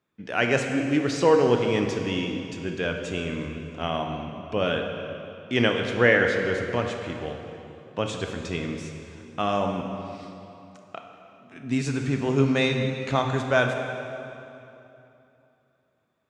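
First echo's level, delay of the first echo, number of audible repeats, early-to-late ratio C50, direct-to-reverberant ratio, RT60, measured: no echo, no echo, no echo, 4.0 dB, 3.0 dB, 2.9 s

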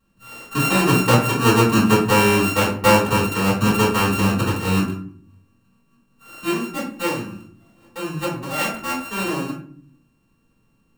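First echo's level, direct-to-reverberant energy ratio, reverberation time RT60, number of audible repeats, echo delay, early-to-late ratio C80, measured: no echo, -8.5 dB, 0.55 s, no echo, no echo, 10.5 dB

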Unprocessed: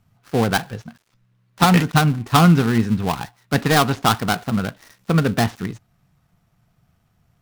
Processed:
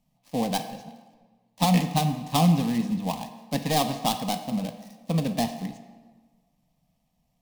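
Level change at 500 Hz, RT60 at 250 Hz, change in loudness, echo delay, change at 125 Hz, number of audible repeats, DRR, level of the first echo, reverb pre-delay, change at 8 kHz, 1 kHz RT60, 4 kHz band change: -7.5 dB, 1.5 s, -7.5 dB, no echo, -8.5 dB, no echo, 8.0 dB, no echo, 3 ms, -5.0 dB, 1.4 s, -6.5 dB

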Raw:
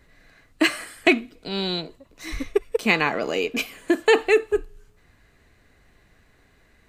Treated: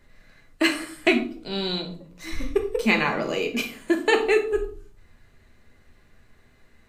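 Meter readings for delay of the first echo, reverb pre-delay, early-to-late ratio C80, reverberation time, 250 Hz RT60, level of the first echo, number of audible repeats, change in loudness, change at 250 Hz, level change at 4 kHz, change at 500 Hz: no echo, 3 ms, 15.0 dB, 0.45 s, 0.80 s, no echo, no echo, -1.5 dB, 0.0 dB, -1.0 dB, -2.0 dB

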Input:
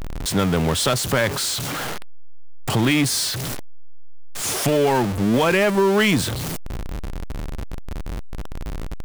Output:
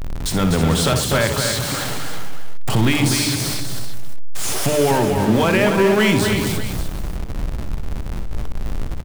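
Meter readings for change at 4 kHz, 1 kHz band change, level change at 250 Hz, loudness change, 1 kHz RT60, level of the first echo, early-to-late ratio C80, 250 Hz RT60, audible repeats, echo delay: +2.0 dB, +2.0 dB, +2.5 dB, +1.5 dB, no reverb, -10.0 dB, no reverb, no reverb, 5, 62 ms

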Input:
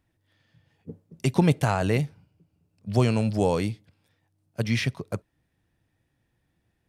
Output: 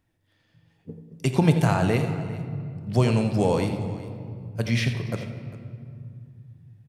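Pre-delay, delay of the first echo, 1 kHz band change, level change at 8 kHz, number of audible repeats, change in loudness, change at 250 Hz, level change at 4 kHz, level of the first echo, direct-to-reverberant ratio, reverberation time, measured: 4 ms, 86 ms, +1.0 dB, +0.5 dB, 2, +1.0 dB, +2.0 dB, +1.0 dB, -11.5 dB, 5.5 dB, 2.2 s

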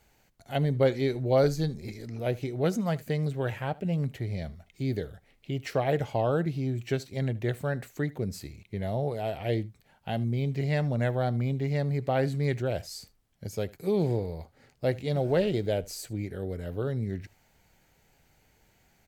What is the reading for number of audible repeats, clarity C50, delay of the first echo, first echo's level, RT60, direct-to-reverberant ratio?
1, no reverb, 76 ms, -22.0 dB, no reverb, no reverb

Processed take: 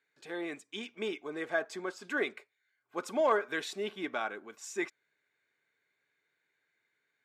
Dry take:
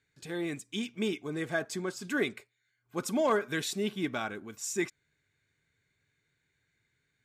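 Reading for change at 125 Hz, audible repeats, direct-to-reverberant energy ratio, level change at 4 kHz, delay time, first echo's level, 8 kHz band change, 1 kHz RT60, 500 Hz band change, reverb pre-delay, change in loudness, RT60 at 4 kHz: -15.0 dB, no echo, no reverb, -4.0 dB, no echo, no echo, -9.0 dB, no reverb, -1.0 dB, no reverb, -2.0 dB, no reverb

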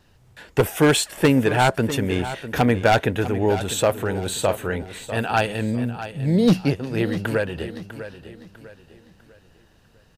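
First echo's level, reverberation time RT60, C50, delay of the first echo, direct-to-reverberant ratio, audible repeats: -12.5 dB, no reverb, no reverb, 649 ms, no reverb, 3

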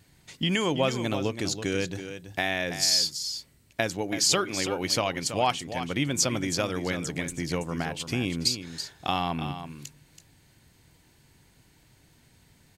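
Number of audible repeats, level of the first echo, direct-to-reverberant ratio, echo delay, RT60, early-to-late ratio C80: 1, -10.0 dB, no reverb, 329 ms, no reverb, no reverb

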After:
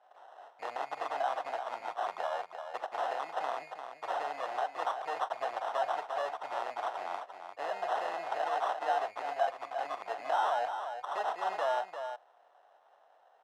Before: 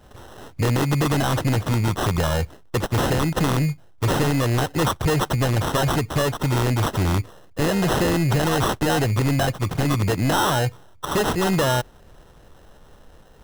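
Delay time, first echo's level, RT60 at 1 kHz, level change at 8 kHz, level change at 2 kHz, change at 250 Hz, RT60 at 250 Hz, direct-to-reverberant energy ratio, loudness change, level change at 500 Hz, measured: 42 ms, -17.0 dB, no reverb, under -25 dB, -13.0 dB, -35.0 dB, no reverb, no reverb, -13.5 dB, -11.5 dB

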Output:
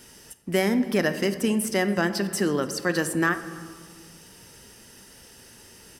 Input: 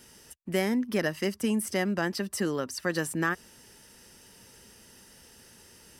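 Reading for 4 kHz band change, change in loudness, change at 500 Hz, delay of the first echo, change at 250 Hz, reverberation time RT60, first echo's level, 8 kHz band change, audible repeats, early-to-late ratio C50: +5.0 dB, +5.0 dB, +5.0 dB, 288 ms, +4.5 dB, 1.8 s, -24.0 dB, +4.5 dB, 1, 12.0 dB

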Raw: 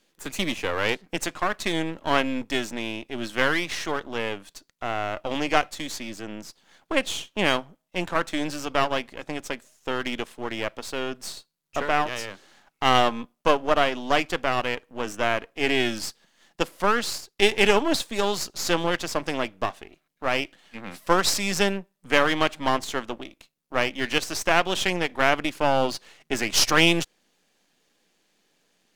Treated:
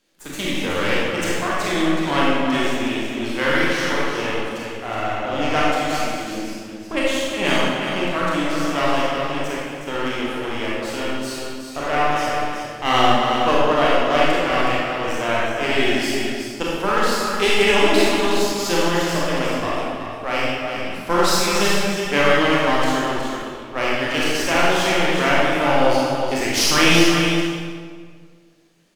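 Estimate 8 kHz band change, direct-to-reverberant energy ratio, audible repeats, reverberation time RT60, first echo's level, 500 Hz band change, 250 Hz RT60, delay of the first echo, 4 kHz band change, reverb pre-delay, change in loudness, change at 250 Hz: +4.0 dB, -7.0 dB, 1, 1.8 s, -6.5 dB, +6.0 dB, 2.0 s, 369 ms, +4.5 dB, 26 ms, +5.0 dB, +7.5 dB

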